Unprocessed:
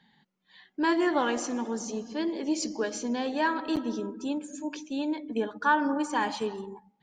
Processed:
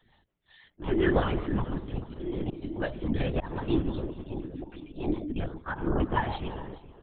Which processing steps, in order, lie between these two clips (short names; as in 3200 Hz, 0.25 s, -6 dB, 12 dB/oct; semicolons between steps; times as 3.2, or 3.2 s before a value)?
rotary speaker horn 5.5 Hz; comb 3.4 ms, depth 94%; auto swell 0.253 s; on a send: feedback echo 0.427 s, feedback 27%, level -16.5 dB; on the sum: LPC vocoder at 8 kHz whisper